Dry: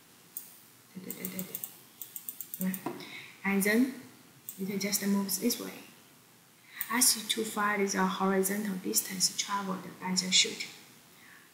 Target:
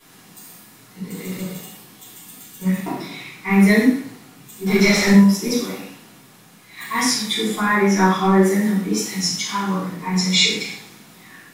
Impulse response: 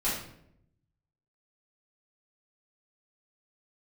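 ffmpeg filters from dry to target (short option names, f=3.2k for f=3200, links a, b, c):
-filter_complex "[0:a]asettb=1/sr,asplit=3[a][b][c];[a]atrim=end=4.664[d];[b]atrim=start=4.66:end=5.1,asetpts=PTS-STARTPTS,afade=t=in:d=0.004:c=qsin,afade=t=out:st=0.436:d=0.004:c=qsin,asplit=2[e][f];[f]highpass=f=720:p=1,volume=21dB,asoftclip=type=tanh:threshold=-15dB[g];[e][g]amix=inputs=2:normalize=0,lowpass=f=3.7k:p=1,volume=-6dB[h];[c]atrim=start=5.096[i];[d][h]acrossfade=d=0.004:c1=hsin:c2=qsin[j];[j][i]acrossfade=d=0.004:c1=qsin:c2=hsin,acrossover=split=6700[k][l];[l]acompressor=threshold=-43dB:ratio=4:attack=1:release=60[m];[k][m]amix=inputs=2:normalize=0[n];[1:a]atrim=start_sample=2205,atrim=end_sample=6615,asetrate=40131,aresample=44100[o];[n][o]afir=irnorm=-1:irlink=0,volume=2dB"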